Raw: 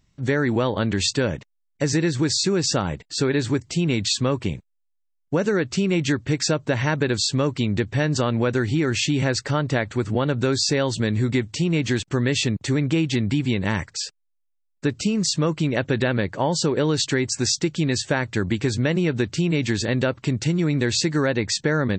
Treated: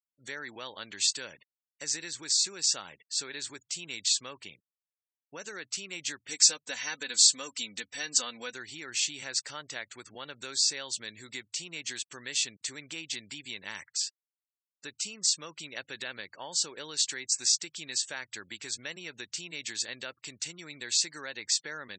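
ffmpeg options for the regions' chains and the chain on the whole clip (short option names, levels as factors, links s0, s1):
-filter_complex "[0:a]asettb=1/sr,asplit=3[s0][s1][s2];[s0]atrim=end=6.294[s3];[s1]atrim=start=6.29:end=8.53,asetpts=PTS-STARTPTS,afade=t=in:d=0.004:c=qsin,afade=t=out:st=2.236:d=0.004:c=qsin,highshelf=f=5400:g=9.5,aecho=1:1:4:0.7,atrim=end_sample=98784[s4];[s2]atrim=start=8.526[s5];[s3][s4]acrossfade=d=0.004:c1=hsin:c2=qsin[s6];[s6][s5]acrossfade=d=0.004:c1=qsin:c2=hsin,afftfilt=real='re*gte(hypot(re,im),0.00794)':imag='im*gte(hypot(re,im),0.00794)':win_size=1024:overlap=0.75,aderivative"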